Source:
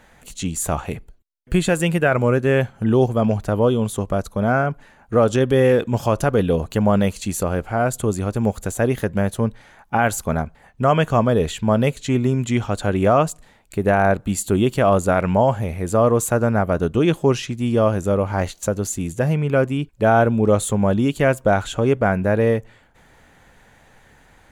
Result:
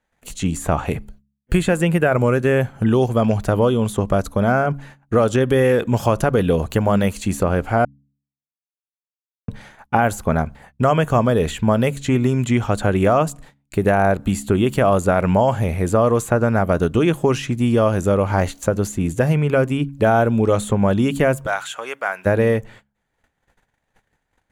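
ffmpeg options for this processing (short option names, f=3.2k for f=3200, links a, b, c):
-filter_complex "[0:a]asplit=3[a][b][c];[a]afade=t=out:st=21.45:d=0.02[d];[b]highpass=1.3k,afade=t=in:st=21.45:d=0.02,afade=t=out:st=22.25:d=0.02[e];[c]afade=t=in:st=22.25:d=0.02[f];[d][e][f]amix=inputs=3:normalize=0,asplit=3[g][h][i];[g]atrim=end=7.85,asetpts=PTS-STARTPTS,afade=t=out:st=7.846:d=0.004:c=hsin[j];[h]atrim=start=7.85:end=9.48,asetpts=PTS-STARTPTS,volume=0[k];[i]atrim=start=9.48,asetpts=PTS-STARTPTS,afade=t=in:d=0.004:c=hsin[l];[j][k][l]concat=n=3:v=0:a=1,acrossover=split=1200|2700|6900[m][n][o][p];[m]acompressor=threshold=-19dB:ratio=4[q];[n]acompressor=threshold=-32dB:ratio=4[r];[o]acompressor=threshold=-47dB:ratio=4[s];[p]acompressor=threshold=-42dB:ratio=4[t];[q][r][s][t]amix=inputs=4:normalize=0,agate=range=-29dB:threshold=-47dB:ratio=16:detection=peak,bandreject=f=69.63:t=h:w=4,bandreject=f=139.26:t=h:w=4,bandreject=f=208.89:t=h:w=4,bandreject=f=278.52:t=h:w=4,volume=5.5dB"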